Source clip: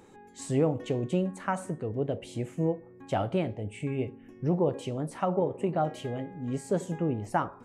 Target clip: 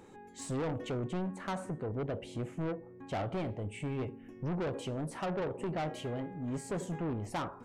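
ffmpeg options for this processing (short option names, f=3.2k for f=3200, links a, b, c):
-af "asetnsamples=n=441:p=0,asendcmd='0.97 highshelf g -9;3.33 highshelf g -2',highshelf=f=4.1k:g=-3,asoftclip=type=tanh:threshold=-31.5dB"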